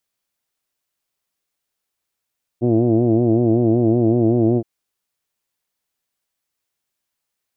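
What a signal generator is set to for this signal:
vowel from formants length 2.02 s, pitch 116 Hz, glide 0 semitones, F1 320 Hz, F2 670 Hz, F3 2,600 Hz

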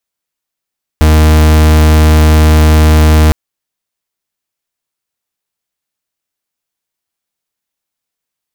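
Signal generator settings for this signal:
pulse wave 77.5 Hz, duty 42% −5.5 dBFS 2.31 s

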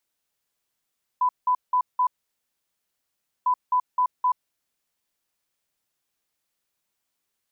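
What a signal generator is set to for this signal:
beeps in groups sine 999 Hz, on 0.08 s, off 0.18 s, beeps 4, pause 1.39 s, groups 2, −17.5 dBFS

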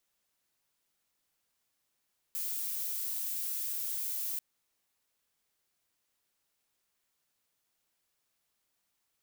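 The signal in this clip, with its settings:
noise violet, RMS −35.5 dBFS 2.04 s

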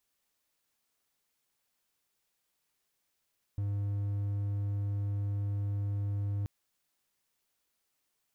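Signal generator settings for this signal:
tone triangle 101 Hz −28 dBFS 2.88 s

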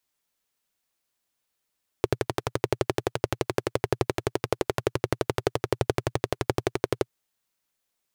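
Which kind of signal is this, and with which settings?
pulse-train model of a single-cylinder engine, steady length 5.05 s, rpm 1,400, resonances 120/380 Hz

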